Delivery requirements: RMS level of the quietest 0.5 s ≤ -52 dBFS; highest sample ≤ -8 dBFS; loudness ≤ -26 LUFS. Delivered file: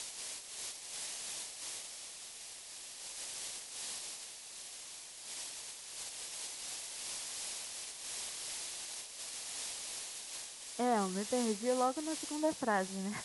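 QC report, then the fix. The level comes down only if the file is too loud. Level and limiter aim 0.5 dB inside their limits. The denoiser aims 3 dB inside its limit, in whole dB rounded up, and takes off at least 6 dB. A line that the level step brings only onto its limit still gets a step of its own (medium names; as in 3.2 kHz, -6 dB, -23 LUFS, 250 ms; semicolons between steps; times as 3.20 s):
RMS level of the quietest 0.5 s -50 dBFS: fail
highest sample -19.5 dBFS: pass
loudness -39.5 LUFS: pass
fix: noise reduction 6 dB, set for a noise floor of -50 dBFS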